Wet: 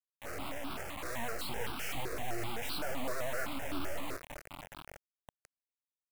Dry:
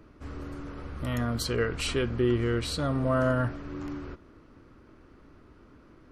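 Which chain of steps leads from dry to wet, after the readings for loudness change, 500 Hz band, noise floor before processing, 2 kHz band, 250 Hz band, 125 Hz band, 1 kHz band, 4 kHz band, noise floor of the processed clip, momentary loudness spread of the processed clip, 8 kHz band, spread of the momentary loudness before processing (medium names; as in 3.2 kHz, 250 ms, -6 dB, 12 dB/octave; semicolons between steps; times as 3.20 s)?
-10.5 dB, -11.0 dB, -56 dBFS, -4.0 dB, -13.5 dB, -17.5 dB, -4.0 dB, -6.5 dB, under -85 dBFS, 11 LU, -3.5 dB, 15 LU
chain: level-controlled noise filter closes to 2.4 kHz, open at -21.5 dBFS; Chebyshev band-pass 280–7600 Hz, order 3; treble shelf 3.3 kHz -6.5 dB; compression 1.5:1, threshold -36 dBFS, peak gain reduction 5 dB; peak limiter -32 dBFS, peak gain reduction 10 dB; half-wave rectifier; chorus 1.7 Hz, delay 17.5 ms, depth 4.3 ms; vibrato 8.9 Hz 83 cents; on a send: echo that smears into a reverb 493 ms, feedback 49%, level -14 dB; on the sum: word length cut 8-bit, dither none; stepped phaser 7.8 Hz 840–1900 Hz; trim +11 dB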